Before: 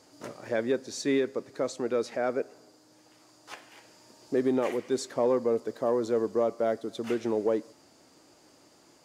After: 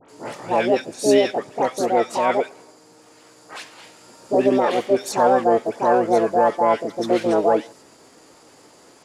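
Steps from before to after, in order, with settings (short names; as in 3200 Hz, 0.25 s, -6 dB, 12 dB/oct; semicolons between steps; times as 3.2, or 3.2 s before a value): LPF 7200 Hz 24 dB/oct; dispersion highs, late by 0.103 s, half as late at 1500 Hz; harmoniser +7 st 0 dB; gain +6.5 dB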